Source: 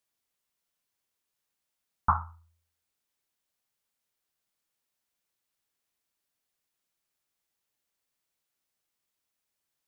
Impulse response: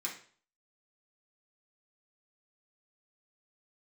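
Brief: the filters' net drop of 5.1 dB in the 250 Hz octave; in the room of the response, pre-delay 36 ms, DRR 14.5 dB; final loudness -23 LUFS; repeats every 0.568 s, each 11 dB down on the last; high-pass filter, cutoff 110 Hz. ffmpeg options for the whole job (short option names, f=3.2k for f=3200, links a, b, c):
-filter_complex "[0:a]highpass=110,equalizer=f=250:t=o:g=-7,aecho=1:1:568|1136|1704:0.282|0.0789|0.0221,asplit=2[a][b];[1:a]atrim=start_sample=2205,adelay=36[c];[b][c]afir=irnorm=-1:irlink=0,volume=-16dB[d];[a][d]amix=inputs=2:normalize=0,volume=10dB"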